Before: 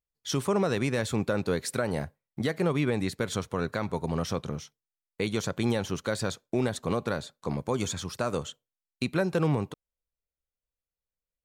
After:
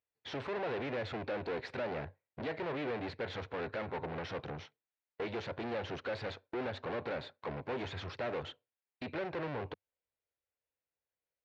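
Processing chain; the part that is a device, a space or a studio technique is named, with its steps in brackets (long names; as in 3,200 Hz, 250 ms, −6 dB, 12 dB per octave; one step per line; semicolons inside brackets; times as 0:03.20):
guitar amplifier (tube saturation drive 41 dB, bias 0.75; bass and treble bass −9 dB, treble −12 dB; loudspeaker in its box 82–4,200 Hz, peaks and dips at 94 Hz +8 dB, 190 Hz −8 dB, 1,200 Hz −6 dB, 3,200 Hz −4 dB)
level +8.5 dB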